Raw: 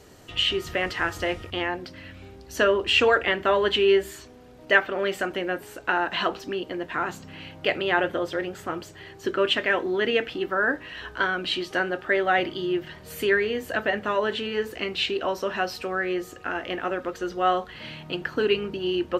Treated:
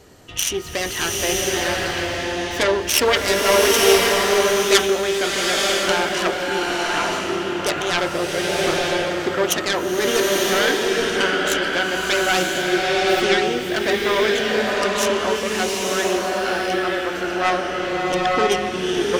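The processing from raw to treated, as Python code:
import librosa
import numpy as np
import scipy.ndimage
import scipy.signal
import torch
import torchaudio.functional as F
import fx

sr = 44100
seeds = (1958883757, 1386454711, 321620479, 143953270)

y = fx.self_delay(x, sr, depth_ms=0.42)
y = fx.rev_bloom(y, sr, seeds[0], attack_ms=950, drr_db=-3.0)
y = y * 10.0 ** (2.5 / 20.0)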